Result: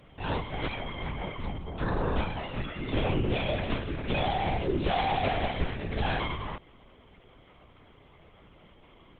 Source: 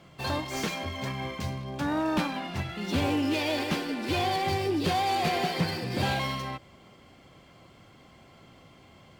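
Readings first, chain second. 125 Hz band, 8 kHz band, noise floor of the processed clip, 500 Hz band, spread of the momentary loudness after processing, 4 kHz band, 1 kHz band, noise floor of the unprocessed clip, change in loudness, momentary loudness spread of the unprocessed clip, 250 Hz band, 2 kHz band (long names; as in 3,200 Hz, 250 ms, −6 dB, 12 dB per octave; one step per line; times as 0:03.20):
+0.5 dB, below −30 dB, −57 dBFS, −0.5 dB, 8 LU, −4.5 dB, −2.0 dB, −55 dBFS, −2.0 dB, 7 LU, −4.0 dB, −2.0 dB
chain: linear-prediction vocoder at 8 kHz whisper
Opus 32 kbit/s 48,000 Hz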